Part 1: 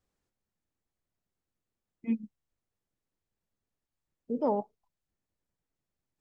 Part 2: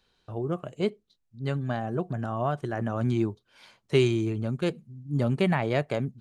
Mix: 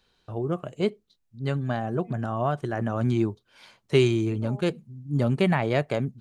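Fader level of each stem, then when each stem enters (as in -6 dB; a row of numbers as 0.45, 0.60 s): -13.5, +2.0 dB; 0.00, 0.00 s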